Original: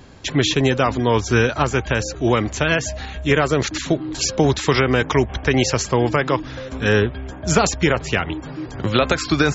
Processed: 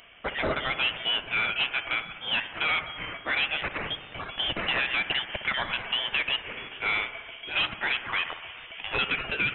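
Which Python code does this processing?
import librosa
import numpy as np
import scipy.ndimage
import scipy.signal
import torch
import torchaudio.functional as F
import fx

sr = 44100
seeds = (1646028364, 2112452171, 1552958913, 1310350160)

y = scipy.signal.sosfilt(scipy.signal.butter(4, 780.0, 'highpass', fs=sr, output='sos'), x)
y = 10.0 ** (-21.0 / 20.0) * np.tanh(y / 10.0 ** (-21.0 / 20.0))
y = fx.echo_wet_highpass(y, sr, ms=61, feedback_pct=76, hz=1900.0, wet_db=-12)
y = fx.freq_invert(y, sr, carrier_hz=3900)
y = fx.band_squash(y, sr, depth_pct=40, at=(4.42, 6.53))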